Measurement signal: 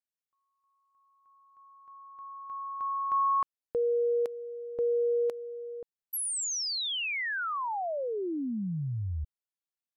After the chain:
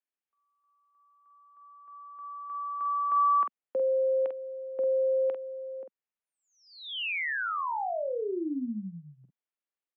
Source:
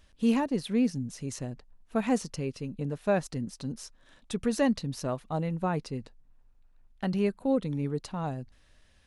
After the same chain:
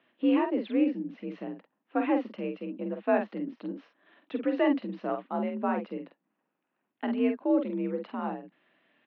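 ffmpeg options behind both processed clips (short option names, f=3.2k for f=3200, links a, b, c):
-filter_complex "[0:a]highpass=f=160:t=q:w=0.5412,highpass=f=160:t=q:w=1.307,lowpass=f=3k:t=q:w=0.5176,lowpass=f=3k:t=q:w=0.7071,lowpass=f=3k:t=q:w=1.932,afreqshift=52,asplit=2[a][b];[b]adelay=47,volume=-6dB[c];[a][c]amix=inputs=2:normalize=0"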